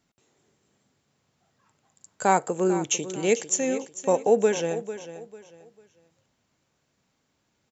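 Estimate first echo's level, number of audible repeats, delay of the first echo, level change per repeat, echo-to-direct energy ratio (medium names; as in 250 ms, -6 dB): -13.0 dB, 3, 447 ms, -11.0 dB, -12.5 dB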